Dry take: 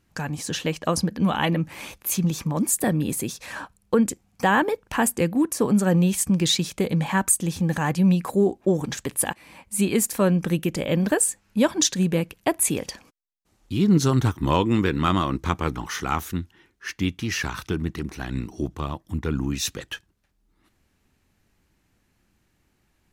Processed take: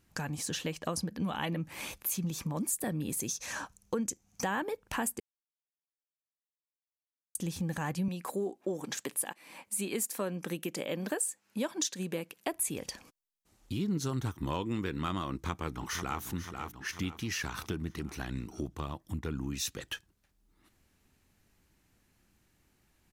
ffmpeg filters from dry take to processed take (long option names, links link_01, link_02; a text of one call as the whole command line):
ffmpeg -i in.wav -filter_complex "[0:a]asettb=1/sr,asplit=3[link_01][link_02][link_03];[link_01]atrim=end=3.204[link_04];[link_02]atrim=start=3.2:end=4.45,asetpts=PTS-STARTPTS,afade=type=in:duration=0.004:curve=qsin,afade=type=out:start_time=1.246:duration=0.004:curve=qsin,equalizer=frequency=6200:width=3.6:gain=13[link_05];[link_03]atrim=start=4.446[link_06];[link_04][link_05]acrossfade=duration=0.004:curve1=hsin:curve2=qsin[link_07];[link_07][link_06]acrossfade=duration=0.004:curve1=qsin:curve2=hsin,asettb=1/sr,asplit=3[link_08][link_09][link_10];[link_08]atrim=end=8.084[link_11];[link_09]atrim=start=8.08:end=12.53,asetpts=PTS-STARTPTS,afade=type=in:duration=0.004:curve=qsin,afade=type=out:start_time=4.446:duration=0.004:curve=qsin,highpass=250[link_12];[link_10]atrim=start=12.526[link_13];[link_11][link_12]acrossfade=duration=0.004:curve1=hsin:curve2=qsin[link_14];[link_14][link_13]acrossfade=duration=0.004:curve1=qsin:curve2=hsin,asplit=2[link_15][link_16];[link_16]afade=type=in:start_time=15.31:duration=0.01,afade=type=out:start_time=16.22:duration=0.01,aecho=0:1:490|980|1470|1960|2450:0.298538|0.149269|0.0746346|0.0373173|0.0186586[link_17];[link_15][link_17]amix=inputs=2:normalize=0,asplit=3[link_18][link_19][link_20];[link_18]atrim=end=5.2,asetpts=PTS-STARTPTS,afade=type=out:start_time=5.196:duration=0.004:curve=hsin[link_21];[link_19]atrim=start=5.2:end=7.35,asetpts=PTS-STARTPTS,volume=0[link_22];[link_20]atrim=start=7.35,asetpts=PTS-STARTPTS,afade=type=in:duration=0.004:curve=hsin[link_23];[link_21][link_22][link_23]concat=n=3:v=0:a=1,highshelf=frequency=5600:gain=5,acompressor=threshold=-32dB:ratio=2.5,volume=-3dB" out.wav